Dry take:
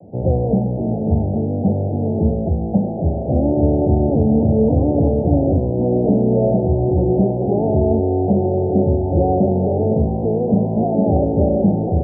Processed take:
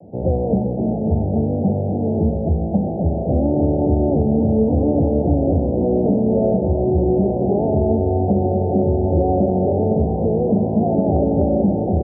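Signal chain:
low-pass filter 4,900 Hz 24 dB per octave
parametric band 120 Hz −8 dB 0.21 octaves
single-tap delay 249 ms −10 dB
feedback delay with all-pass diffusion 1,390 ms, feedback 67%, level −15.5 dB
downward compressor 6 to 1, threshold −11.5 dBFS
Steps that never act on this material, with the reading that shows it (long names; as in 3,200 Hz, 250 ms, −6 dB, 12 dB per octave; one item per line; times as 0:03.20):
low-pass filter 4,900 Hz: nothing at its input above 910 Hz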